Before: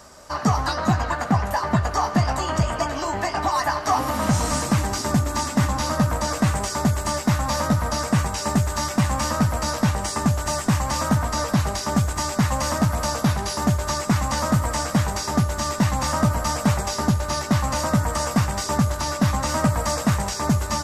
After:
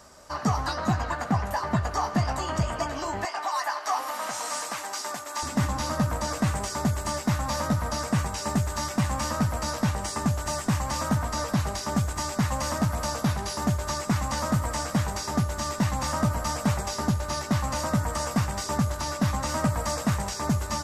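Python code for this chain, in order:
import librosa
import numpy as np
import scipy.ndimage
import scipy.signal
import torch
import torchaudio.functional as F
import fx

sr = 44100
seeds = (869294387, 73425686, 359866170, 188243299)

y = fx.highpass(x, sr, hz=670.0, slope=12, at=(3.25, 5.43))
y = y * librosa.db_to_amplitude(-5.0)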